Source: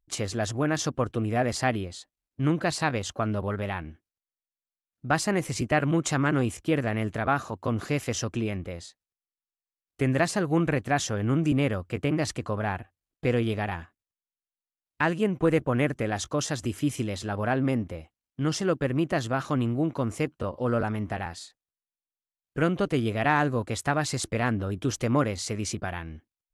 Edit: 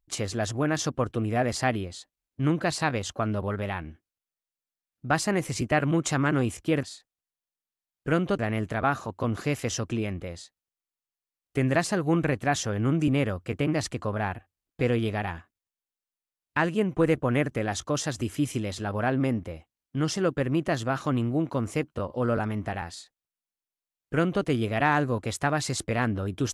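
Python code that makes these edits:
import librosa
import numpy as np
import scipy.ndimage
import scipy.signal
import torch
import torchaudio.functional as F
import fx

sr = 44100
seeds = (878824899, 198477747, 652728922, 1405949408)

y = fx.edit(x, sr, fx.duplicate(start_s=21.33, length_s=1.56, to_s=6.83), tone=tone)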